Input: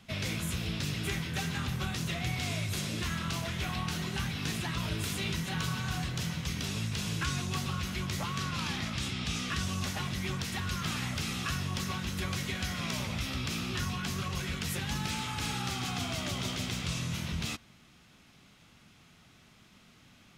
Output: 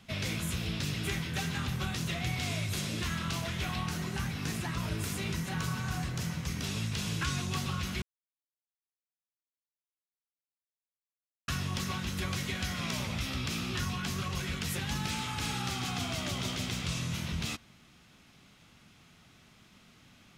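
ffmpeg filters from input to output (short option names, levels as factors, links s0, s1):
-filter_complex "[0:a]asettb=1/sr,asplit=3[s0][s1][s2];[s0]atrim=end=3.884[s3];[s1]atrim=start=3.88:end=6.63,asetpts=PTS-STARTPTS,afade=t=in:d=0.004:c=qsin,afade=t=out:st=2.746:d=0.004:c=qsin,equalizer=f=3400:w=1.5:g=-6[s4];[s2]atrim=start=6.626[s5];[s3][s4]acrossfade=d=0.004:c1=hsin:c2=qsin[s6];[s6][s5]acrossfade=d=0.004:c1=qsin:c2=hsin,asplit=3[s7][s8][s9];[s7]atrim=end=8.02,asetpts=PTS-STARTPTS,afade=t=out:st=8.016:d=0.004:c=hsin[s10];[s8]atrim=start=8.02:end=11.48,asetpts=PTS-STARTPTS,volume=0[s11];[s9]atrim=start=11.48,asetpts=PTS-STARTPTS,afade=t=in:d=0.004:c=hsin[s12];[s10][s11][s12]concat=n=3:v=0:a=1"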